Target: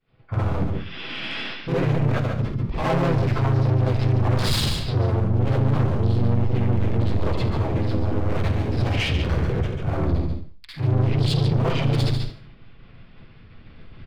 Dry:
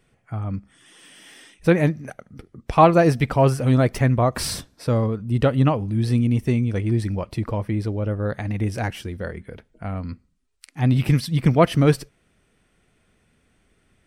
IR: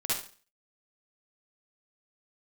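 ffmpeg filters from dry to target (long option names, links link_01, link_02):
-filter_complex "[0:a]aresample=11025,aresample=44100,areverse,acompressor=threshold=-27dB:ratio=10,areverse,asubboost=boost=2:cutoff=220,asplit=2[link_01][link_02];[link_02]alimiter=limit=-23.5dB:level=0:latency=1:release=198,volume=1dB[link_03];[link_01][link_03]amix=inputs=2:normalize=0,asoftclip=type=hard:threshold=-25.5dB,equalizer=frequency=1800:width_type=o:width=0.21:gain=-7,agate=range=-33dB:threshold=-45dB:ratio=3:detection=peak,aecho=1:1:142:0.447[link_04];[1:a]atrim=start_sample=2205[link_05];[link_04][link_05]afir=irnorm=-1:irlink=0,asoftclip=type=tanh:threshold=-23dB,asplit=2[link_06][link_07];[link_07]asetrate=35002,aresample=44100,atempo=1.25992,volume=-1dB[link_08];[link_06][link_08]amix=inputs=2:normalize=0,volume=3dB"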